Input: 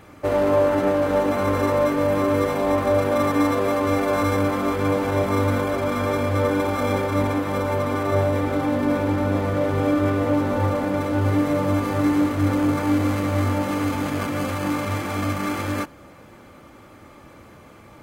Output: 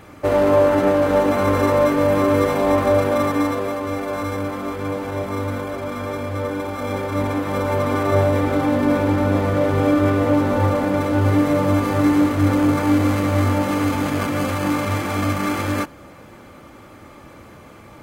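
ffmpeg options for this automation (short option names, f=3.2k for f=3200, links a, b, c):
-af "volume=11dB,afade=t=out:st=2.84:d=0.96:silence=0.421697,afade=t=in:st=6.76:d=1.19:silence=0.421697"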